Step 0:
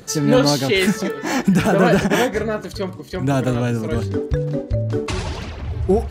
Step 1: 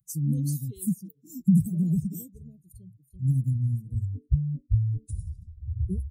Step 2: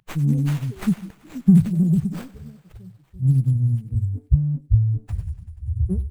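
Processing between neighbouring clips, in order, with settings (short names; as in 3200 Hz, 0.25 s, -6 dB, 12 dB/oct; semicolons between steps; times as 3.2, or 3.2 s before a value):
per-bin expansion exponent 2; Chebyshev band-stop 170–9400 Hz, order 3; gain +2 dB
thinning echo 96 ms, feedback 77%, high-pass 440 Hz, level -17 dB; running maximum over 9 samples; gain +6.5 dB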